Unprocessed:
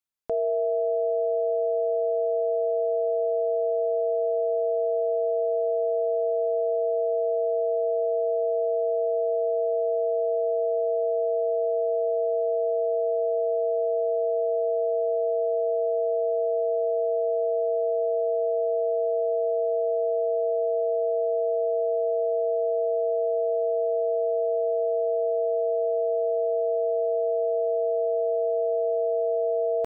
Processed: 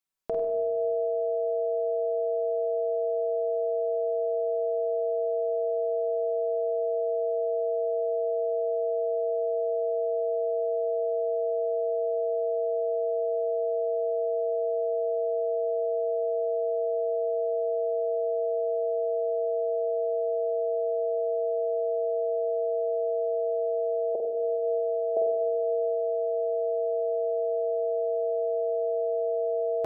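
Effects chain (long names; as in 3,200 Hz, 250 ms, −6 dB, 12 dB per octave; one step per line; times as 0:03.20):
0:24.15–0:25.17: high-pass filter 340 Hz 24 dB per octave
on a send: flutter between parallel walls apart 8.4 metres, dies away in 0.5 s
on the sum: rectangular room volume 2,500 cubic metres, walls mixed, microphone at 1.1 metres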